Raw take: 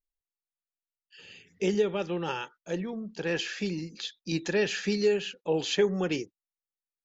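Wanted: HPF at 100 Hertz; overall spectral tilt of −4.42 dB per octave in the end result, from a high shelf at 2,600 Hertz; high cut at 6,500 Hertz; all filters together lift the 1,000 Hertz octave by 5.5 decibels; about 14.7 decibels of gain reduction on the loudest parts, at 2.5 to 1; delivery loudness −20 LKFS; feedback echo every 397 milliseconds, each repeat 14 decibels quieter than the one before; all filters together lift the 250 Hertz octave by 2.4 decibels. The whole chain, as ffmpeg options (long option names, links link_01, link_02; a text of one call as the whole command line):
ffmpeg -i in.wav -af "highpass=100,lowpass=6500,equalizer=frequency=250:width_type=o:gain=3.5,equalizer=frequency=1000:width_type=o:gain=8,highshelf=frequency=2600:gain=-7.5,acompressor=threshold=-41dB:ratio=2.5,aecho=1:1:397|794:0.2|0.0399,volume=20dB" out.wav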